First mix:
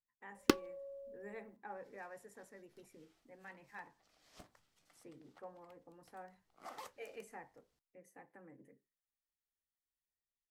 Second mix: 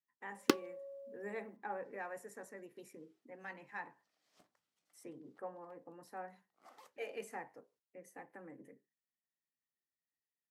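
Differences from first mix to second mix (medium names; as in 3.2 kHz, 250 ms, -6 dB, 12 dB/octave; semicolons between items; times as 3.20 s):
speech +6.0 dB; second sound -10.5 dB; master: add high-pass 170 Hz 12 dB/octave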